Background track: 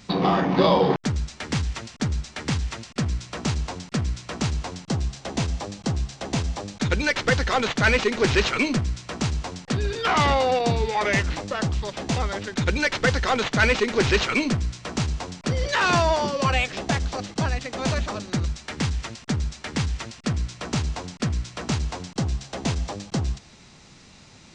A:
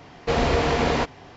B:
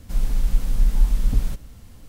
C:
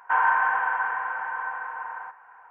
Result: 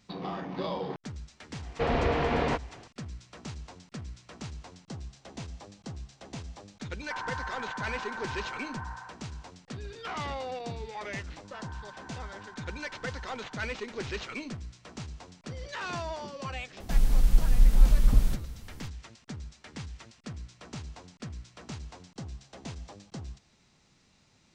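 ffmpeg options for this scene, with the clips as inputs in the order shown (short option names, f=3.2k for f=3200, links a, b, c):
-filter_complex "[3:a]asplit=2[a][b];[0:a]volume=-15.5dB[c];[1:a]lowpass=3.1k[d];[a]acompressor=threshold=-26dB:ratio=6:attack=3.2:release=140:knee=1:detection=peak[e];[b]acompressor=threshold=-36dB:ratio=6:attack=3.2:release=140:knee=1:detection=peak[f];[d]atrim=end=1.36,asetpts=PTS-STARTPTS,volume=-5.5dB,afade=t=in:d=0.004:c=hsin,afade=t=out:st=1.356:d=0.004:c=hsin,adelay=1520[g];[e]atrim=end=2.5,asetpts=PTS-STARTPTS,volume=-8dB,afade=t=in:d=0.004:c=hsin,afade=t=out:st=2.496:d=0.004:c=hsin,adelay=7010[h];[f]atrim=end=2.5,asetpts=PTS-STARTPTS,volume=-10.5dB,afade=t=in:d=0.004:c=hsin,afade=t=out:st=2.496:d=0.004:c=hsin,adelay=11440[i];[2:a]atrim=end=2.08,asetpts=PTS-STARTPTS,volume=-1.5dB,afade=t=in:d=0.004:c=hsin,afade=t=out:st=2.076:d=0.004:c=hsin,adelay=16800[j];[c][g][h][i][j]amix=inputs=5:normalize=0"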